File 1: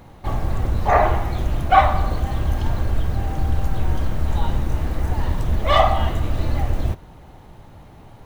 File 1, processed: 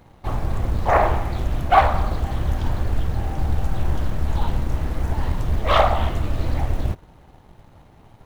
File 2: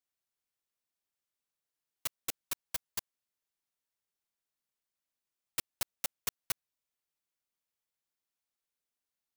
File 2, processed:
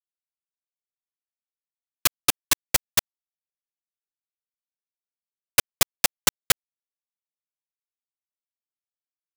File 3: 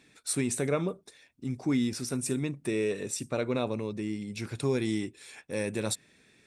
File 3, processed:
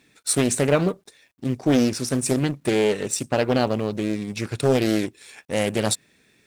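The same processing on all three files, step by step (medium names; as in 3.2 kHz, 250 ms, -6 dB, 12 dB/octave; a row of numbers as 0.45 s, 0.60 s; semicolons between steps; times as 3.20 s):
companding laws mixed up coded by A; loudspeaker Doppler distortion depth 0.61 ms; normalise loudness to -23 LUFS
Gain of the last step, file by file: -1.0 dB, +19.0 dB, +10.5 dB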